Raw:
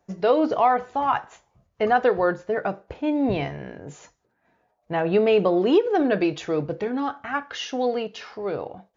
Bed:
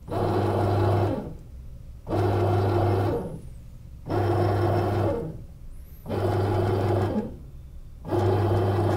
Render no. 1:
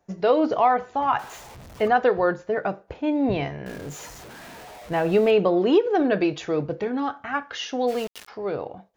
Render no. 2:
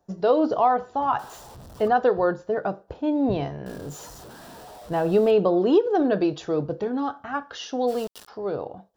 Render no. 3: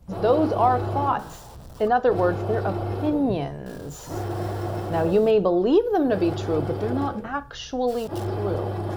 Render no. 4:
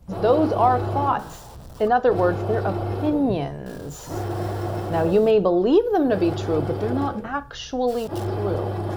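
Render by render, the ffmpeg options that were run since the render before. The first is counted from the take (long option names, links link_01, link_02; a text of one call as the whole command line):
ffmpeg -i in.wav -filter_complex "[0:a]asettb=1/sr,asplit=3[link_01][link_02][link_03];[link_01]atrim=end=1.194[link_04];[link_02]atrim=start=1.19:end=1.88,asetpts=PTS-STARTPTS,afade=type=in:duration=0.004:curve=qsin,afade=type=out:start_time=0.686:duration=0.004:curve=qsin,aeval=exprs='val(0)+0.5*0.0126*sgn(val(0))':channel_layout=same[link_05];[link_03]atrim=start=1.876[link_06];[link_04][link_05]acrossfade=duration=0.004:curve1=hsin:curve2=qsin[link_07];[link_07][link_06]acrossfade=duration=0.004:curve1=qsin:curve2=hsin,asettb=1/sr,asplit=3[link_08][link_09][link_10];[link_08]atrim=end=3.664[link_11];[link_09]atrim=start=3.66:end=5.31,asetpts=PTS-STARTPTS,afade=type=in:duration=0.004:curve=qsin,afade=type=out:start_time=1.646:duration=0.004:curve=qsin,aeval=exprs='val(0)+0.5*0.015*sgn(val(0))':channel_layout=same[link_12];[link_10]atrim=start=5.306[link_13];[link_11][link_12]acrossfade=duration=0.004:curve1=hsin:curve2=qsin[link_14];[link_14][link_13]acrossfade=duration=0.004:curve1=qsin:curve2=hsin,asplit=3[link_15][link_16][link_17];[link_15]afade=type=out:start_time=7.87:duration=0.02[link_18];[link_16]aeval=exprs='val(0)*gte(abs(val(0)),0.0211)':channel_layout=same,afade=type=in:start_time=7.87:duration=0.02,afade=type=out:start_time=8.27:duration=0.02[link_19];[link_17]afade=type=in:start_time=8.27:duration=0.02[link_20];[link_18][link_19][link_20]amix=inputs=3:normalize=0" out.wav
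ffmpeg -i in.wav -af "equalizer=frequency=2200:width=2.1:gain=-13,bandreject=frequency=6500:width=13" out.wav
ffmpeg -i in.wav -i bed.wav -filter_complex "[1:a]volume=-5.5dB[link_01];[0:a][link_01]amix=inputs=2:normalize=0" out.wav
ffmpeg -i in.wav -af "volume=1.5dB" out.wav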